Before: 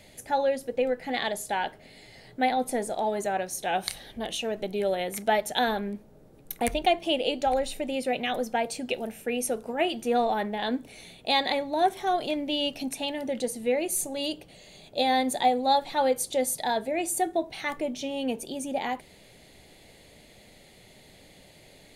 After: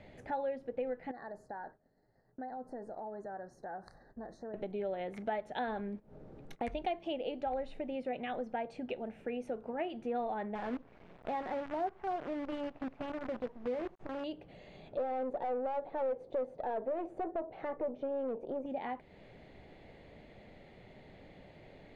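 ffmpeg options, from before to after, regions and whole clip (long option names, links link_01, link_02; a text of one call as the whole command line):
ffmpeg -i in.wav -filter_complex "[0:a]asettb=1/sr,asplit=3[link_01][link_02][link_03];[link_01]atrim=end=1.114[link_04];[link_02]atrim=start=1.11:end=4.54,asetpts=PTS-STARTPTS,afade=type=in:duration=0.004:curve=qsin,afade=type=out:start_time=3.426:duration=0.004:curve=qsin,agate=range=-33dB:threshold=-39dB:ratio=3:release=100:detection=peak,asuperstop=centerf=2800:order=12:qfactor=1.2,acompressor=threshold=-48dB:ratio=2:attack=3.2:release=140:knee=1:detection=peak[link_05];[link_03]atrim=start=4.536[link_06];[link_04][link_05]acrossfade=duration=0.004:curve1=hsin:curve2=qsin[link_07];[link_07][link_06]acrossfade=duration=0.004:curve1=qsin:curve2=hsin,asettb=1/sr,asplit=3[link_08][link_09][link_10];[link_08]atrim=end=5.794[link_11];[link_09]atrim=start=5.79:end=7.13,asetpts=PTS-STARTPTS,afade=type=in:duration=0.004:curve=qsin,afade=type=out:start_time=1.336:duration=0.004:curve=qsin,agate=range=-19dB:threshold=-43dB:ratio=16:release=100:detection=peak,equalizer=frequency=6600:width_type=o:width=1.7:gain=7.5,acompressor=mode=upward:threshold=-32dB:ratio=2.5:attack=3.2:release=140:knee=2.83:detection=peak[link_12];[link_10]atrim=start=7.126[link_13];[link_11][link_12]acrossfade=duration=0.004:curve1=hsin:curve2=qsin[link_14];[link_14][link_13]acrossfade=duration=0.004:curve1=qsin:curve2=hsin,asettb=1/sr,asplit=3[link_15][link_16][link_17];[link_15]atrim=end=10.554[link_18];[link_16]atrim=start=10.55:end=14.24,asetpts=PTS-STARTPTS,afade=type=in:duration=0.004:curve=qsin,afade=type=out:start_time=3.686:duration=0.004:curve=qsin,lowpass=1500,acrusher=bits=6:dc=4:mix=0:aa=0.000001[link_19];[link_17]atrim=start=14.236[link_20];[link_18][link_19]acrossfade=duration=0.004:curve1=hsin:curve2=qsin[link_21];[link_21][link_20]acrossfade=duration=0.004:curve1=qsin:curve2=hsin,asettb=1/sr,asplit=3[link_22][link_23][link_24];[link_22]atrim=end=14.974[link_25];[link_23]atrim=start=14.97:end=18.66,asetpts=PTS-STARTPTS,afade=type=in:duration=0.004:curve=qsin,afade=type=out:start_time=3.686:duration=0.004:curve=qsin,lowpass=frequency=1300:poles=1,aeval=exprs='(tanh(39.8*val(0)+0.6)-tanh(0.6))/39.8':channel_layout=same,equalizer=frequency=530:width=1.1:gain=14.5[link_26];[link_24]atrim=start=18.656[link_27];[link_25][link_26]acrossfade=duration=0.004:curve1=hsin:curve2=qsin[link_28];[link_28][link_27]acrossfade=duration=0.004:curve1=qsin:curve2=hsin,lowpass=1800,acompressor=threshold=-42dB:ratio=2" out.wav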